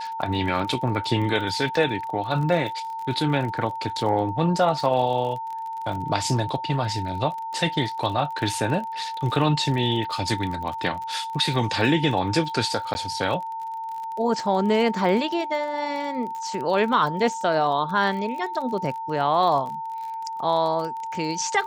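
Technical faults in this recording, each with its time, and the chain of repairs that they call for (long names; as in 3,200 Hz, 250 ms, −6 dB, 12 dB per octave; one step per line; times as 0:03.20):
surface crackle 34 per second −31 dBFS
whistle 900 Hz −29 dBFS
0:12.94–0:12.95: drop-out 10 ms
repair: click removal
notch filter 900 Hz, Q 30
repair the gap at 0:12.94, 10 ms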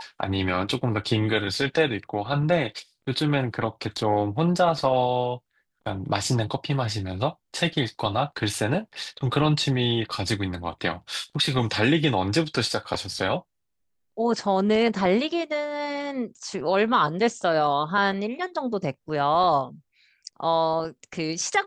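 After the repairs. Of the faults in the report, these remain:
none of them is left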